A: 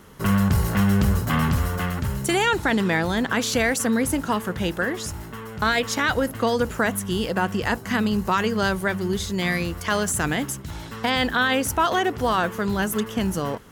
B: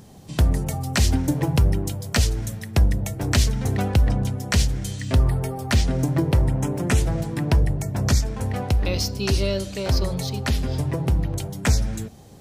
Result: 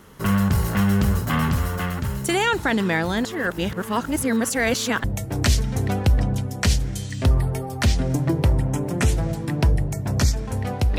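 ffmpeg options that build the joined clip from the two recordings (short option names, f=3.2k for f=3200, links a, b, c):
-filter_complex "[0:a]apad=whole_dur=10.98,atrim=end=10.98,asplit=2[a][b];[a]atrim=end=3.252[c];[b]atrim=start=3.248:end=5.042,asetpts=PTS-STARTPTS,areverse[d];[1:a]atrim=start=2.928:end=8.87[e];[c][d]acrossfade=d=0.004:c1=hsin:c2=hsin[f];[f][e]acrossfade=d=0.004:c1=hsin:c2=hsin"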